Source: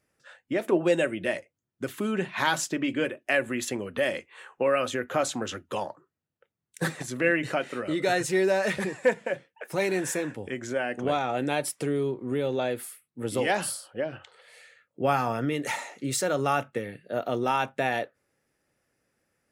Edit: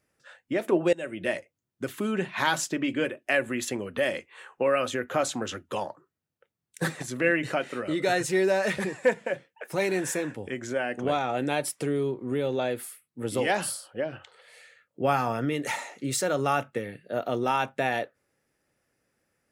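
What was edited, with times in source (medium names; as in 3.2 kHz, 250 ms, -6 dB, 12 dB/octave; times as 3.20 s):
0.93–1.27 s: fade in, from -23.5 dB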